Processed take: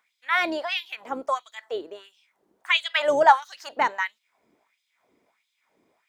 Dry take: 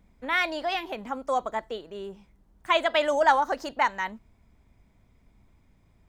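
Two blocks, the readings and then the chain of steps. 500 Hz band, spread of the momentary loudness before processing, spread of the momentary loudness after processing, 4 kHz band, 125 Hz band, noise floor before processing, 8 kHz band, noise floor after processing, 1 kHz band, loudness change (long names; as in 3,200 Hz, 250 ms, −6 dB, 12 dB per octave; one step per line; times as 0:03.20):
+0.5 dB, 15 LU, 16 LU, +4.0 dB, can't be measured, −63 dBFS, +0.5 dB, −77 dBFS, +2.5 dB, +2.5 dB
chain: sub-octave generator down 2 octaves, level −1 dB
auto-filter high-pass sine 1.5 Hz 320–3,700 Hz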